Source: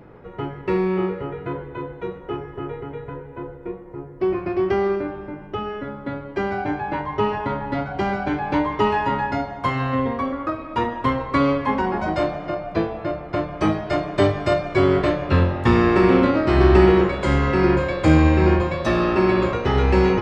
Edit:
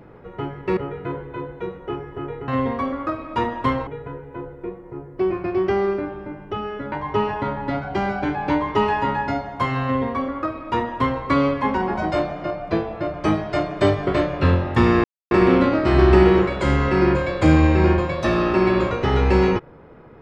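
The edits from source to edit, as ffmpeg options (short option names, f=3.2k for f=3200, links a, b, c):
-filter_complex "[0:a]asplit=8[a][b][c][d][e][f][g][h];[a]atrim=end=0.772[i];[b]atrim=start=1.178:end=2.892[j];[c]atrim=start=9.878:end=11.272[k];[d]atrim=start=2.888:end=5.942[l];[e]atrim=start=6.958:end=13.182[m];[f]atrim=start=13.508:end=14.442[n];[g]atrim=start=14.958:end=15.93,asetpts=PTS-STARTPTS,afade=t=out:st=0.968:d=0.004:c=hsin,apad=pad_dur=0.27[o];[h]atrim=start=15.93,asetpts=PTS-STARTPTS,afade=t=in:d=0.004:c=hsin[p];[i][j]acrossfade=d=0.004:c1=hsin:c2=hsin[q];[q][k]acrossfade=d=0.004:c1=hsin:c2=hsin[r];[r][l]acrossfade=d=0.004:c1=hsin:c2=hsin[s];[s][m]acrossfade=d=0.004:c1=hsin:c2=hsin[t];[t][n]acrossfade=d=0.004:c1=hsin:c2=hsin[u];[o][p]concat=n=2:v=0:a=1[v];[u][v]acrossfade=d=0.004:c1=hsin:c2=hsin"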